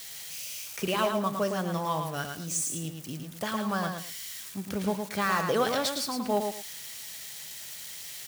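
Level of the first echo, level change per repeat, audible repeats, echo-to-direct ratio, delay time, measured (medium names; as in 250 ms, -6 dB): -5.5 dB, -13.0 dB, 2, -5.5 dB, 110 ms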